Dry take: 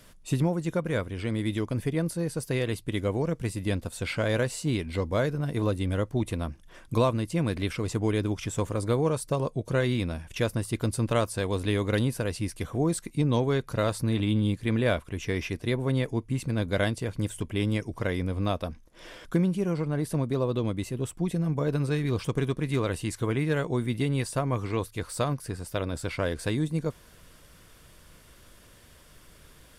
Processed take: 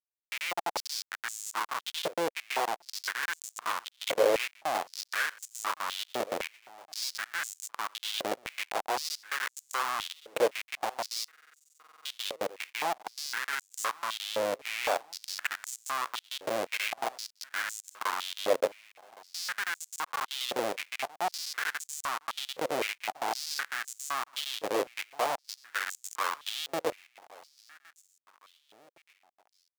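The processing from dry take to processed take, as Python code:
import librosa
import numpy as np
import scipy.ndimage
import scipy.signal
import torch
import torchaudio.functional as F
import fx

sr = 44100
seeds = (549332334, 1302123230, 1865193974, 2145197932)

p1 = fx.high_shelf_res(x, sr, hz=4500.0, db=-9.0, q=1.5)
p2 = fx.rider(p1, sr, range_db=4, speed_s=0.5)
p3 = fx.schmitt(p2, sr, flips_db=-25.5)
p4 = p3 + fx.echo_feedback(p3, sr, ms=1114, feedback_pct=46, wet_db=-21, dry=0)
p5 = fx.buffer_glitch(p4, sr, at_s=(11.31,), block=2048, repeats=15)
p6 = fx.filter_held_highpass(p5, sr, hz=3.9, low_hz=520.0, high_hz=7100.0)
y = p6 * 10.0 ** (2.0 / 20.0)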